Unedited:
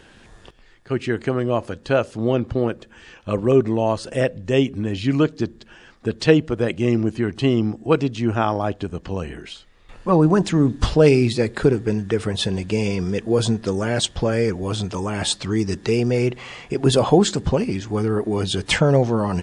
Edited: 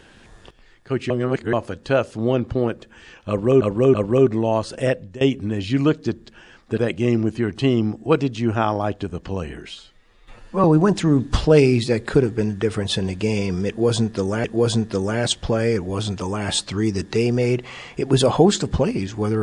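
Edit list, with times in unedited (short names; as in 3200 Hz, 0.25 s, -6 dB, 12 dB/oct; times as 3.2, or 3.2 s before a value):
1.1–1.53 reverse
3.29–3.62 loop, 3 plays
4.18–4.55 fade out equal-power, to -21 dB
6.12–6.58 cut
9.51–10.13 stretch 1.5×
13.17–13.93 loop, 2 plays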